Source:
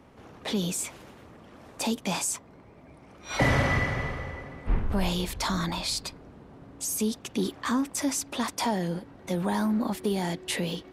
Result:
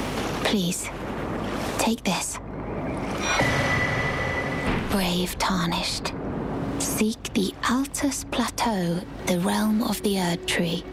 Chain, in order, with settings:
mains hum 50 Hz, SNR 26 dB
multiband upward and downward compressor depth 100%
level +4 dB

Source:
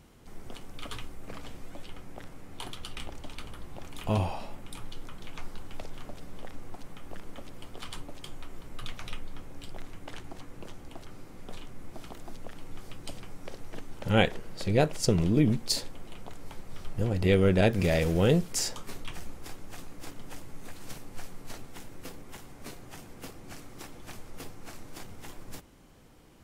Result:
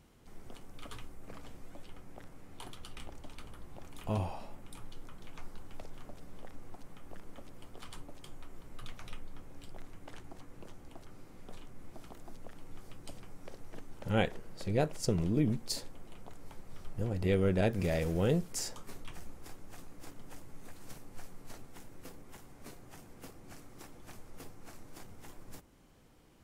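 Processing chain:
dynamic equaliser 3,300 Hz, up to −4 dB, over −60 dBFS, Q 0.9
level −6 dB

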